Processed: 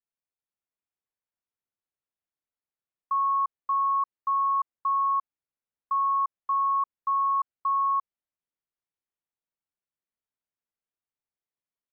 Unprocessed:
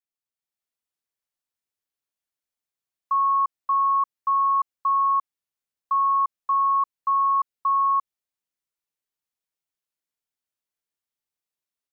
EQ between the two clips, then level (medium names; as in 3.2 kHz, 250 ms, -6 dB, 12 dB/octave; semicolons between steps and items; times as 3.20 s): distance through air 480 m; -1.5 dB